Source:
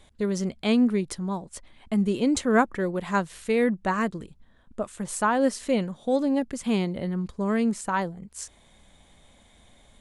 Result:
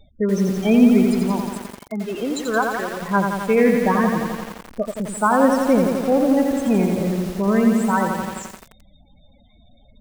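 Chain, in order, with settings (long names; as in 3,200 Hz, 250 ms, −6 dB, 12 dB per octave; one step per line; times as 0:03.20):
0:01.48–0:03.00: high-pass filter 440 Hz → 1,200 Hz 6 dB per octave
spectral peaks only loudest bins 16
feedback echo at a low word length 86 ms, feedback 80%, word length 7 bits, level −4.5 dB
level +6 dB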